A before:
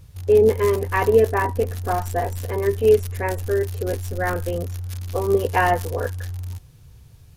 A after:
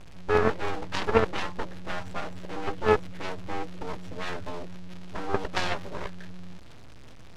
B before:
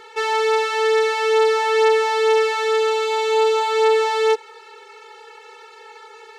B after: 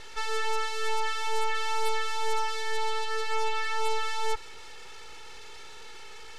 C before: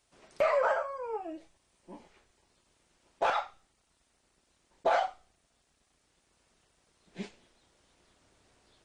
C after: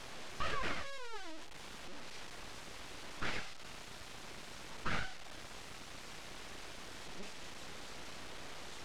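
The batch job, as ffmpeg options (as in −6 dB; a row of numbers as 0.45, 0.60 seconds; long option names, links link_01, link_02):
-af "aeval=exprs='val(0)+0.5*0.106*sgn(val(0))':channel_layout=same,lowpass=3600,aeval=exprs='0.631*(cos(1*acos(clip(val(0)/0.631,-1,1)))-cos(1*PI/2))+0.224*(cos(3*acos(clip(val(0)/0.631,-1,1)))-cos(3*PI/2))+0.126*(cos(4*acos(clip(val(0)/0.631,-1,1)))-cos(4*PI/2))+0.141*(cos(6*acos(clip(val(0)/0.631,-1,1)))-cos(6*PI/2))':channel_layout=same,volume=-4dB"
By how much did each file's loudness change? −9.0, −12.5, −14.0 LU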